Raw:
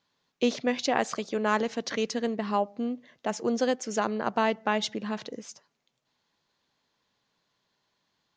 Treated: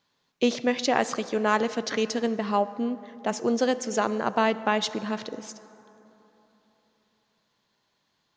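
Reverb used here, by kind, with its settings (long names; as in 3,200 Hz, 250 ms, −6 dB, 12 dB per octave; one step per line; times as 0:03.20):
dense smooth reverb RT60 3.5 s, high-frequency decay 0.45×, DRR 14.5 dB
level +2.5 dB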